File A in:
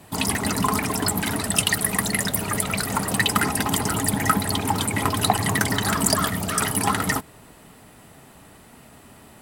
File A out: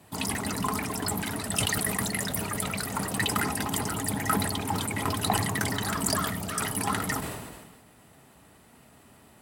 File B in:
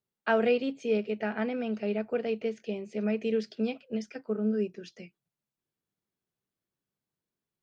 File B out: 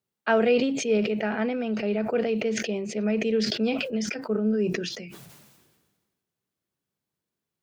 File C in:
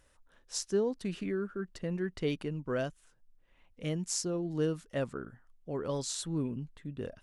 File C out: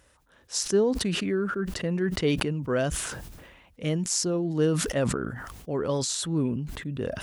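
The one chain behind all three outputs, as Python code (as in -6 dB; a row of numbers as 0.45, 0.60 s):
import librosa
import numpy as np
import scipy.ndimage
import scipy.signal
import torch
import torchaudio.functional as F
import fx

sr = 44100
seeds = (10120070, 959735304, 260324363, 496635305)

y = scipy.signal.sosfilt(scipy.signal.butter(4, 43.0, 'highpass', fs=sr, output='sos'), x)
y = fx.sustainer(y, sr, db_per_s=39.0)
y = y * 10.0 ** (-9 / 20.0) / np.max(np.abs(y))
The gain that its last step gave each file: -7.5, +3.5, +6.5 dB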